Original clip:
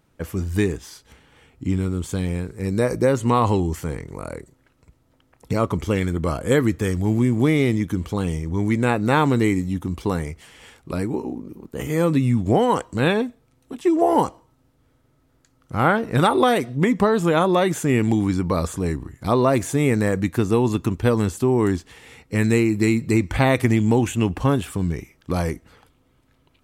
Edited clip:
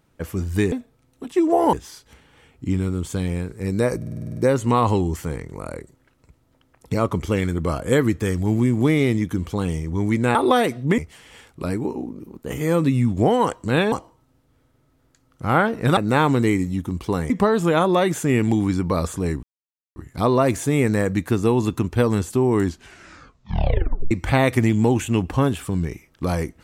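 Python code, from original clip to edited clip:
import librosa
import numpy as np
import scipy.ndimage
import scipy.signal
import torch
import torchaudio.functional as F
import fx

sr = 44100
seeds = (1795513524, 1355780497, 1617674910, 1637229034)

y = fx.edit(x, sr, fx.stutter(start_s=2.96, slice_s=0.05, count=9),
    fx.swap(start_s=8.94, length_s=1.33, other_s=16.27, other_length_s=0.63),
    fx.move(start_s=13.21, length_s=1.01, to_s=0.72),
    fx.insert_silence(at_s=19.03, length_s=0.53),
    fx.tape_stop(start_s=21.73, length_s=1.45), tone=tone)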